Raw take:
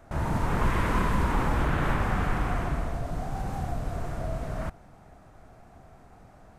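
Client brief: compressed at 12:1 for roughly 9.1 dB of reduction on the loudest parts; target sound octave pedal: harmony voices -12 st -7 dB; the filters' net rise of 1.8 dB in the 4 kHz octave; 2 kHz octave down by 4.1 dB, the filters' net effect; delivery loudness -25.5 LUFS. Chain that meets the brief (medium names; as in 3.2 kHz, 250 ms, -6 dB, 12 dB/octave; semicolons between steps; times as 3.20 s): peaking EQ 2 kHz -6.5 dB; peaking EQ 4 kHz +5 dB; compression 12:1, threshold -30 dBFS; harmony voices -12 st -7 dB; trim +11 dB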